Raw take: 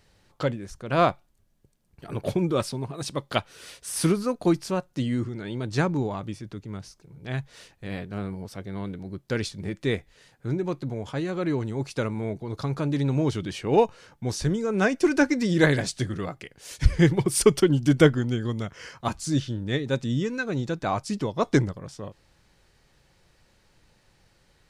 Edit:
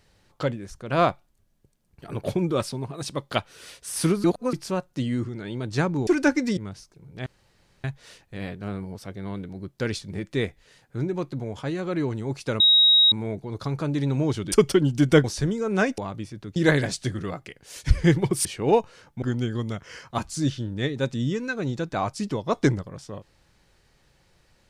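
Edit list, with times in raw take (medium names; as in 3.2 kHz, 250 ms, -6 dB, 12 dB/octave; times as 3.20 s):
4.24–4.53 s: reverse
6.07–6.65 s: swap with 15.01–15.51 s
7.34 s: insert room tone 0.58 s
12.10 s: add tone 3.8 kHz -13 dBFS 0.52 s
13.50–14.27 s: swap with 17.40–18.12 s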